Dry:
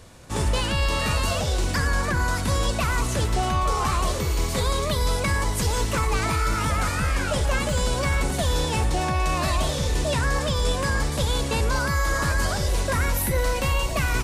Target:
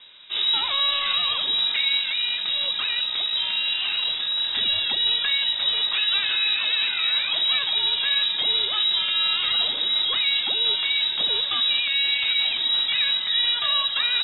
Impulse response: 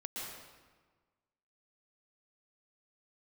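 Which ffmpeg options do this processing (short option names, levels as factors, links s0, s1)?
-filter_complex "[0:a]asettb=1/sr,asplit=3[s0][s1][s2];[s0]atrim=end=1.974[s3];[s1]atrim=start=1.97:end=4.48,asetpts=PTS-STARTPTS,afade=t=in:d=0.004:c=qsin,afade=t=out:st=2.506:d=0.004:c=qsin,aeval=exprs='(tanh(8.91*val(0)+0.25)-tanh(0.25))/8.91':c=same[s4];[s2]atrim=start=4.476[s5];[s3][s4]acrossfade=d=0.004:c1=hsin:c2=qsin[s6];[s6][s5]acrossfade=d=0.004:c1=qsin:c2=hsin,lowpass=f=3300:t=q:w=0.5098,lowpass=f=3300:t=q:w=0.6013,lowpass=f=3300:t=q:w=0.9,lowpass=f=3300:t=q:w=2.563,afreqshift=-3900"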